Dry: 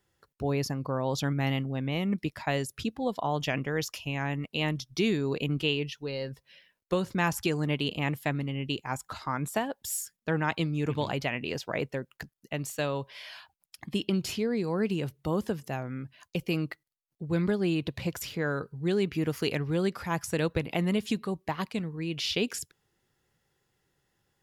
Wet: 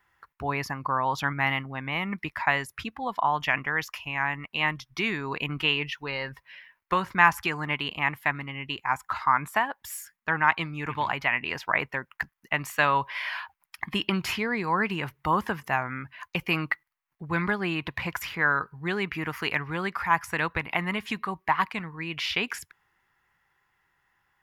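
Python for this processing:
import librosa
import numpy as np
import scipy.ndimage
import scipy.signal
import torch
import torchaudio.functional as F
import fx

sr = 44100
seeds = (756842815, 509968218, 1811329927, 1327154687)

y = fx.graphic_eq(x, sr, hz=(125, 250, 500, 1000, 2000, 4000, 8000), db=(-5, -4, -9, 12, 10, -4, -7))
y = fx.rider(y, sr, range_db=10, speed_s=2.0)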